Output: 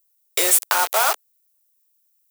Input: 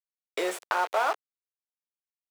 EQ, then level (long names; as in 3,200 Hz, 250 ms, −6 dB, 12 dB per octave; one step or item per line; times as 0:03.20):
RIAA equalisation recording
low-shelf EQ 140 Hz +5 dB
high-shelf EQ 6,000 Hz +10.5 dB
+5.0 dB